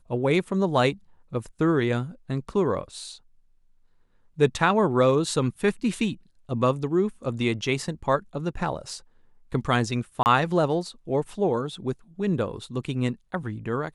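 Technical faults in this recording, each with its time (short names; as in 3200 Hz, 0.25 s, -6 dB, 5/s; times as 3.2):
10.23–10.26 gap 29 ms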